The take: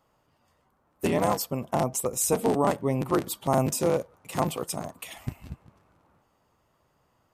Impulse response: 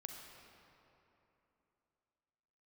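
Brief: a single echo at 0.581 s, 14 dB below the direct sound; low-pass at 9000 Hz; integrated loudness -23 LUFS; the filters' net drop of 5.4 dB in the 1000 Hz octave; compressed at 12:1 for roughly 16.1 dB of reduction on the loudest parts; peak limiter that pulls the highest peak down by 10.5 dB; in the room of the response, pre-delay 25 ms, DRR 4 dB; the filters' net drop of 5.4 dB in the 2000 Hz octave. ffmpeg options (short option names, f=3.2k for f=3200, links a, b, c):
-filter_complex "[0:a]lowpass=9k,equalizer=f=1k:t=o:g=-6.5,equalizer=f=2k:t=o:g=-5,acompressor=threshold=-37dB:ratio=12,alimiter=level_in=12.5dB:limit=-24dB:level=0:latency=1,volume=-12.5dB,aecho=1:1:581:0.2,asplit=2[a][b];[1:a]atrim=start_sample=2205,adelay=25[c];[b][c]afir=irnorm=-1:irlink=0,volume=-0.5dB[d];[a][d]amix=inputs=2:normalize=0,volume=22.5dB"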